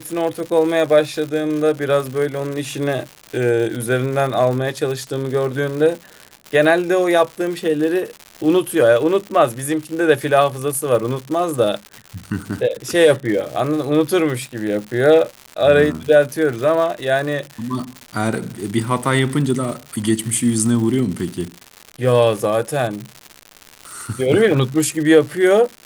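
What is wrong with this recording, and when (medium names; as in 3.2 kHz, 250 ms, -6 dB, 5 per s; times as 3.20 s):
crackle 180 per s -25 dBFS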